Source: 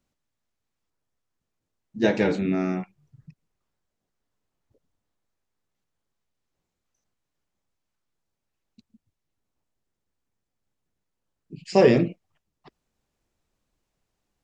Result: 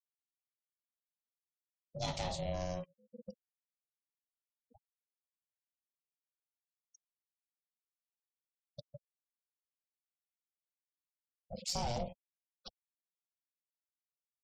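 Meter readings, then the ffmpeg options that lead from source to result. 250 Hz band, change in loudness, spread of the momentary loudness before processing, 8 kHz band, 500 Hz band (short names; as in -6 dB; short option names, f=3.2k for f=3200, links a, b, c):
-22.0 dB, -17.0 dB, 11 LU, n/a, -19.5 dB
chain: -filter_complex "[0:a]aeval=exprs='if(lt(val(0),0),0.708*val(0),val(0))':c=same,acrossover=split=130|440|1400[a][b][c][d];[b]dynaudnorm=f=260:g=21:m=15dB[e];[d]aexciter=amount=4.4:drive=9.8:freq=3k[f];[a][e][c][f]amix=inputs=4:normalize=0,aeval=exprs='val(0)*sin(2*PI*360*n/s)':c=same,aeval=exprs='0.841*(cos(1*acos(clip(val(0)/0.841,-1,1)))-cos(1*PI/2))+0.0668*(cos(3*acos(clip(val(0)/0.841,-1,1)))-cos(3*PI/2))+0.0335*(cos(4*acos(clip(val(0)/0.841,-1,1)))-cos(4*PI/2))':c=same,alimiter=limit=-12dB:level=0:latency=1:release=18,afftfilt=real='re*gte(hypot(re,im),0.00398)':imag='im*gte(hypot(re,im),0.00398)':win_size=1024:overlap=0.75,acompressor=threshold=-50dB:ratio=2,volume=2.5dB"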